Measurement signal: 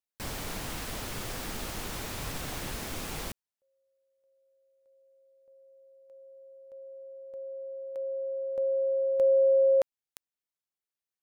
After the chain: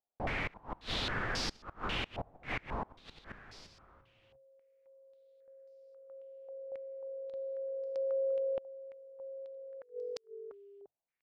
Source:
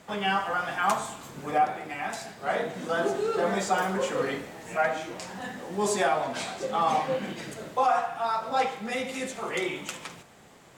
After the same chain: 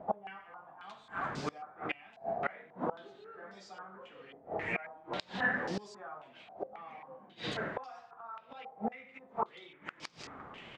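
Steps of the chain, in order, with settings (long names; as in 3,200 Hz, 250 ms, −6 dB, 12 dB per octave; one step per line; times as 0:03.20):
echo with shifted repeats 346 ms, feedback 43%, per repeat −46 Hz, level −19 dB
gate with flip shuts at −25 dBFS, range −26 dB
low-pass on a step sequencer 3.7 Hz 730–5,000 Hz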